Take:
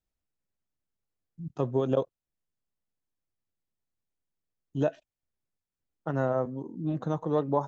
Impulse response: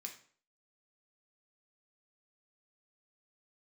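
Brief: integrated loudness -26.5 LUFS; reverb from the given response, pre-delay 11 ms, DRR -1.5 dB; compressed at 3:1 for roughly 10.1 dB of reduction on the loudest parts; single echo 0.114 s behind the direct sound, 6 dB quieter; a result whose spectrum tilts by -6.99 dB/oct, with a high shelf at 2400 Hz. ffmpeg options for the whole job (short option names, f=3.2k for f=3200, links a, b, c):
-filter_complex "[0:a]highshelf=f=2.4k:g=-5,acompressor=threshold=-35dB:ratio=3,aecho=1:1:114:0.501,asplit=2[a][b];[1:a]atrim=start_sample=2205,adelay=11[c];[b][c]afir=irnorm=-1:irlink=0,volume=5.5dB[d];[a][d]amix=inputs=2:normalize=0,volume=10dB"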